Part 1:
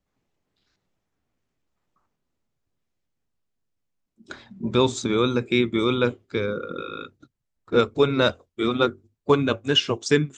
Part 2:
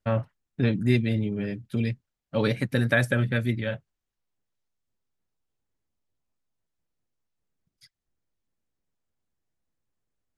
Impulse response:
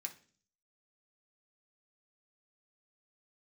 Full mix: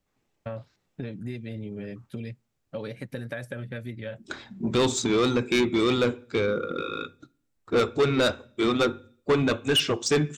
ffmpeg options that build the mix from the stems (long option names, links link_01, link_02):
-filter_complex "[0:a]volume=1dB,asplit=2[link_01][link_02];[link_02]volume=-5dB[link_03];[1:a]equalizer=frequency=530:width_type=o:width=0.77:gain=5,acompressor=threshold=-27dB:ratio=6,adelay=400,volume=-4.5dB,asplit=2[link_04][link_05];[link_05]volume=-23.5dB[link_06];[2:a]atrim=start_sample=2205[link_07];[link_03][link_06]amix=inputs=2:normalize=0[link_08];[link_08][link_07]afir=irnorm=-1:irlink=0[link_09];[link_01][link_04][link_09]amix=inputs=3:normalize=0,asoftclip=type=tanh:threshold=-16.5dB"